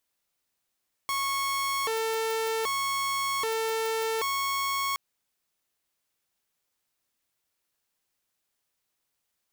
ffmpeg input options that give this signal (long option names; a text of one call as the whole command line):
ffmpeg -f lavfi -i "aevalsrc='0.0631*(2*mod((773.5*t+326.5/0.64*(0.5-abs(mod(0.64*t,1)-0.5))),1)-1)':duration=3.87:sample_rate=44100" out.wav